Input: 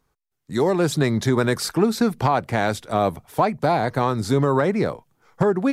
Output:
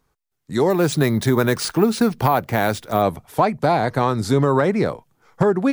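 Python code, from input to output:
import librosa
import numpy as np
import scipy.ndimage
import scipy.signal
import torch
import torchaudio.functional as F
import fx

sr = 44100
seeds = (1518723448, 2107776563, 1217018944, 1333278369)

y = fx.resample_bad(x, sr, factor=3, down='none', up='hold', at=(0.7, 3.02))
y = y * 10.0 ** (2.0 / 20.0)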